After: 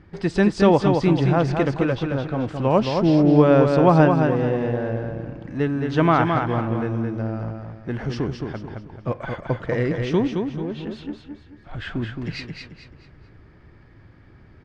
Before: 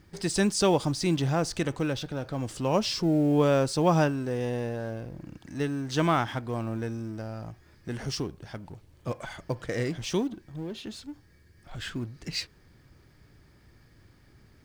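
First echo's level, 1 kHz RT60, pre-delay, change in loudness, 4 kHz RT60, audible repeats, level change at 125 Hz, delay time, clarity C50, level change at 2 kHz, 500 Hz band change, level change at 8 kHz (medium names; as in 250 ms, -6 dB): -5.0 dB, no reverb, no reverb, +8.0 dB, no reverb, 4, +8.5 dB, 218 ms, no reverb, +7.0 dB, +8.5 dB, under -10 dB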